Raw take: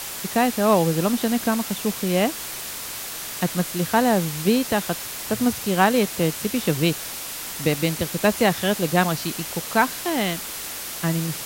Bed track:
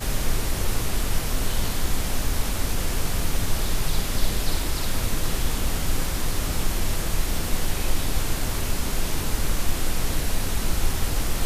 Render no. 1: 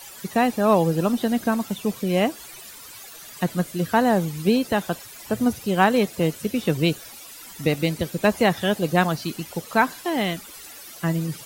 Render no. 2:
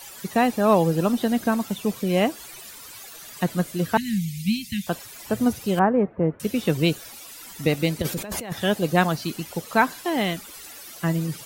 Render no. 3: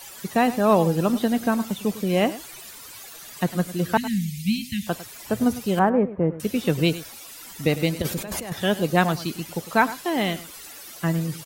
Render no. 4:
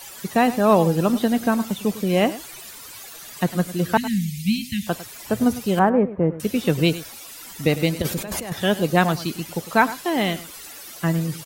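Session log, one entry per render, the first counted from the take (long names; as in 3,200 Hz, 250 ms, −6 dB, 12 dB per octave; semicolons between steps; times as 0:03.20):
broadband denoise 14 dB, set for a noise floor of −33 dBFS
0:03.97–0:04.87: Chebyshev band-stop filter 220–2,100 Hz, order 4; 0:05.79–0:06.40: Bessel low-pass filter 1,100 Hz, order 6; 0:08.02–0:08.52: compressor whose output falls as the input rises −30 dBFS
single-tap delay 102 ms −15.5 dB
level +2 dB; brickwall limiter −3 dBFS, peak gain reduction 1 dB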